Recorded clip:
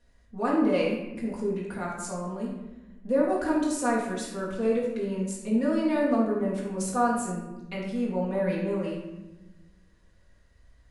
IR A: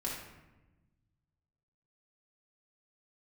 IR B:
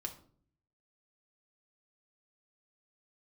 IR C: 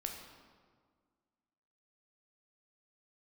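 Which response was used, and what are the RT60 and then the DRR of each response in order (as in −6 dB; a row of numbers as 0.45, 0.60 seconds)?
A; 1.1, 0.50, 1.8 seconds; −5.0, 2.5, 2.0 decibels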